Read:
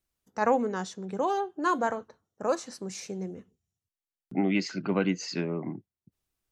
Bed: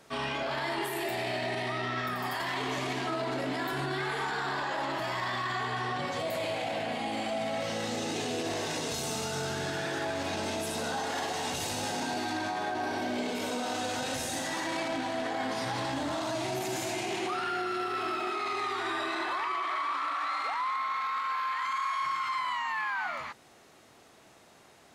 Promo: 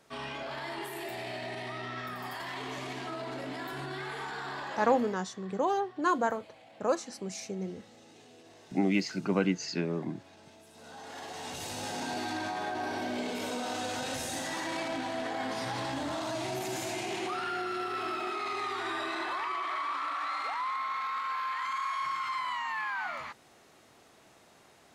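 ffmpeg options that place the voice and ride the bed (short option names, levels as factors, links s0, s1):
-filter_complex "[0:a]adelay=4400,volume=0.891[s0];[1:a]volume=5.31,afade=t=out:st=4.81:d=0.39:silence=0.149624,afade=t=in:st=10.73:d=1.45:silence=0.0944061[s1];[s0][s1]amix=inputs=2:normalize=0"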